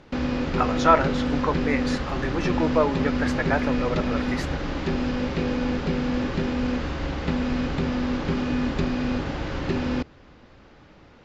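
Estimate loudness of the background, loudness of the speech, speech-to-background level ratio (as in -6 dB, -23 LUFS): -26.5 LUFS, -26.0 LUFS, 0.5 dB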